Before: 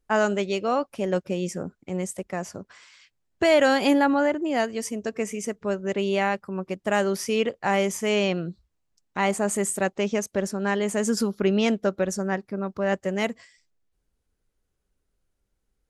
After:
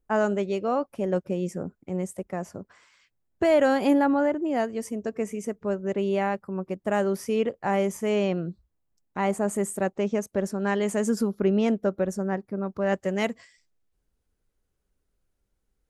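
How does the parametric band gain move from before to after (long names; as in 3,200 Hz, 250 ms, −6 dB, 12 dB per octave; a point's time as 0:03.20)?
parametric band 4,300 Hz 2.8 octaves
0:10.23 −10.5 dB
0:10.86 −2.5 dB
0:11.24 −11.5 dB
0:12.51 −11.5 dB
0:13.01 −2 dB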